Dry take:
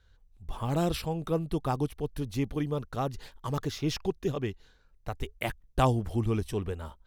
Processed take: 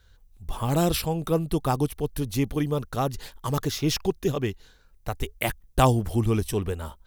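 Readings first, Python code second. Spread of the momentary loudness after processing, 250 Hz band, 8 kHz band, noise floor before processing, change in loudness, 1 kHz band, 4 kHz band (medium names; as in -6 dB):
11 LU, +5.0 dB, +10.5 dB, -63 dBFS, +5.5 dB, +5.0 dB, +7.0 dB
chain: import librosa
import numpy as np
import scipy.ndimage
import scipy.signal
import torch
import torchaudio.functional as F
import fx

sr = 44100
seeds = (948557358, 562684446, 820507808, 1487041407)

y = fx.high_shelf(x, sr, hz=7500.0, db=11.5)
y = y * 10.0 ** (5.0 / 20.0)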